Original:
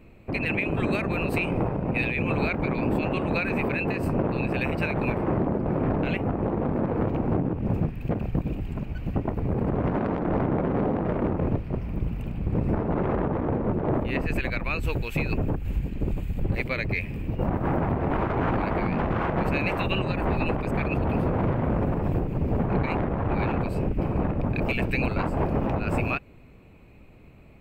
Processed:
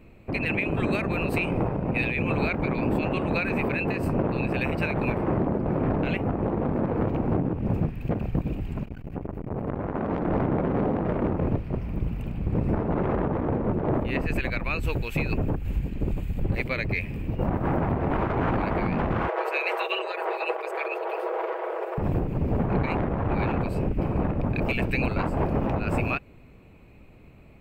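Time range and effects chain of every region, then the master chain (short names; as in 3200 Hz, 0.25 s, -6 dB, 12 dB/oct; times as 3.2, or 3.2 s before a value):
8.83–10.1 notches 60/120/180 Hz + dynamic EQ 4200 Hz, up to -5 dB, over -55 dBFS, Q 0.74 + core saturation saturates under 560 Hz
19.28–21.98 brick-wall FIR high-pass 350 Hz + comb 6.2 ms, depth 50%
whole clip: dry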